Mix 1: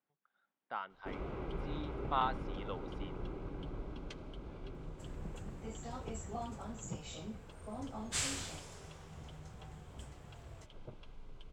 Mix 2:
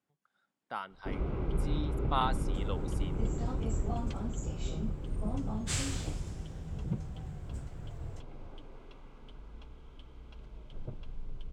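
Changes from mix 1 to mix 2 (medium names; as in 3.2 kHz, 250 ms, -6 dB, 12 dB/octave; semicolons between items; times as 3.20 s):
speech: remove distance through air 260 m; second sound: entry -2.45 s; master: add bass shelf 290 Hz +11.5 dB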